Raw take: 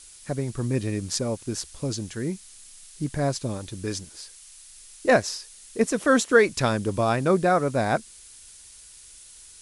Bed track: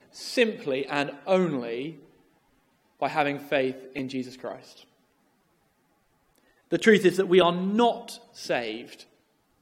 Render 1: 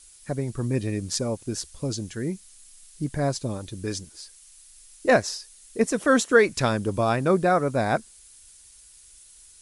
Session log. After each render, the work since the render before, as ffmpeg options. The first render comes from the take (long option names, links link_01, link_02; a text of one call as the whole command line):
ffmpeg -i in.wav -af "afftdn=noise_reduction=6:noise_floor=-48" out.wav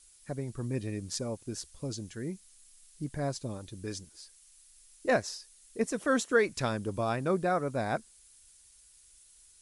ffmpeg -i in.wav -af "volume=-8dB" out.wav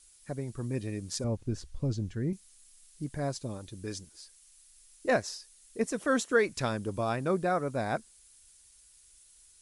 ffmpeg -i in.wav -filter_complex "[0:a]asettb=1/sr,asplit=3[link_01][link_02][link_03];[link_01]atrim=end=1.244[link_04];[link_02]atrim=start=1.24:end=2.33,asetpts=PTS-STARTPTS,afade=type=in:duration=0.004:curve=qsin,afade=type=out:start_time=1.086:duration=0.004:curve=qsin,aemphasis=mode=reproduction:type=bsi[link_05];[link_03]atrim=start=2.326[link_06];[link_04][link_05]acrossfade=duration=0.004:curve1=hsin:curve2=qsin[link_07];[link_07][link_06]acrossfade=duration=0.004:curve1=qsin:curve2=hsin" out.wav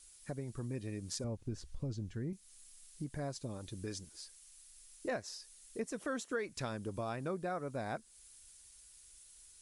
ffmpeg -i in.wav -af "acompressor=threshold=-40dB:ratio=2.5" out.wav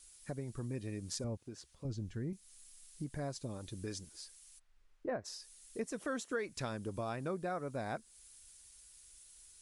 ffmpeg -i in.wav -filter_complex "[0:a]asettb=1/sr,asplit=3[link_01][link_02][link_03];[link_01]atrim=end=1.384[link_04];[link_02]atrim=start=1.38:end=1.85,asetpts=PTS-STARTPTS,afade=type=in:duration=0.004:curve=qsin,afade=type=out:start_time=0.466:duration=0.004:curve=qsin,highpass=frequency=470:poles=1[link_05];[link_03]atrim=start=1.846[link_06];[link_04][link_05]acrossfade=duration=0.004:curve1=hsin:curve2=qsin[link_07];[link_07][link_06]acrossfade=duration=0.004:curve1=qsin:curve2=hsin,asplit=3[link_08][link_09][link_10];[link_08]afade=type=out:start_time=4.58:duration=0.02[link_11];[link_09]lowpass=1400,afade=type=in:start_time=4.58:duration=0.02,afade=type=out:start_time=5.24:duration=0.02[link_12];[link_10]afade=type=in:start_time=5.24:duration=0.02[link_13];[link_11][link_12][link_13]amix=inputs=3:normalize=0" out.wav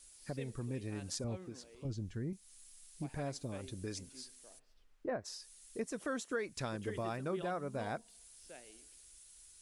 ffmpeg -i in.wav -i bed.wav -filter_complex "[1:a]volume=-27.5dB[link_01];[0:a][link_01]amix=inputs=2:normalize=0" out.wav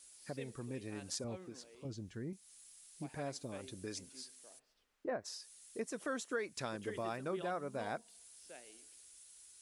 ffmpeg -i in.wav -af "highpass=frequency=230:poles=1" out.wav